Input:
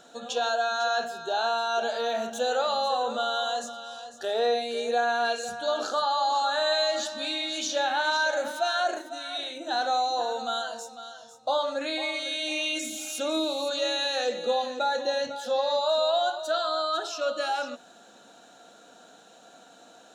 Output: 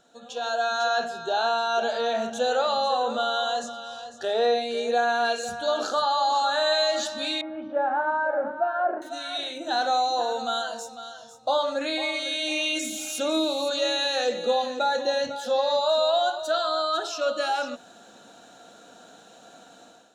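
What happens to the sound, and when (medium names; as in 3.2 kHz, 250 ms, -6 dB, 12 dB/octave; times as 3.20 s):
0.87–4.95 s: Bessel low-pass 7.6 kHz
7.41–9.02 s: low-pass 1.4 kHz 24 dB/octave
whole clip: level rider gain up to 11.5 dB; bass shelf 110 Hz +10.5 dB; trim -9 dB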